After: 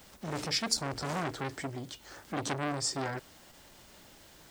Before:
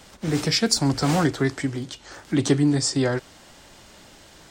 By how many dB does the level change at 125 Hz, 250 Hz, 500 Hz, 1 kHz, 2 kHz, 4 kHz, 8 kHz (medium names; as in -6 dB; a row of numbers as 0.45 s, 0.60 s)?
-15.0 dB, -16.5 dB, -12.5 dB, -5.5 dB, -8.0 dB, -8.5 dB, -8.5 dB